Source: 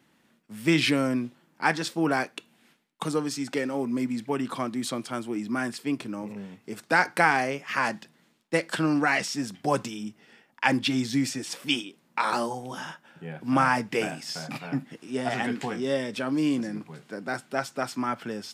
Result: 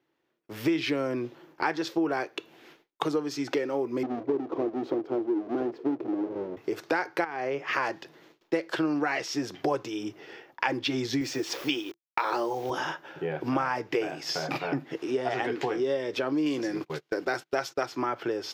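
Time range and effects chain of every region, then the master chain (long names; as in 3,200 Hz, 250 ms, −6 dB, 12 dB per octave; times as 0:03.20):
0:04.03–0:06.57: each half-wave held at its own peak + resonant band-pass 330 Hz, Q 1.4
0:07.24–0:07.73: low-pass filter 3,400 Hz 6 dB per octave + downward compressor 4 to 1, threshold −28 dBFS
0:11.21–0:12.70: high-pass filter 100 Hz + bit-depth reduction 8 bits, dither none
0:16.46–0:17.86: high-shelf EQ 2,000 Hz +9 dB + noise gate −43 dBFS, range −31 dB
whole clip: noise gate with hold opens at −53 dBFS; drawn EQ curve 150 Hz 0 dB, 210 Hz −13 dB, 340 Hz +12 dB, 610 Hz +6 dB, 970 Hz +5 dB, 1,500 Hz +3 dB, 3,200 Hz +2 dB, 6,200 Hz 0 dB, 8,800 Hz −14 dB, 14,000 Hz 0 dB; downward compressor 4 to 1, threshold −33 dBFS; level +5.5 dB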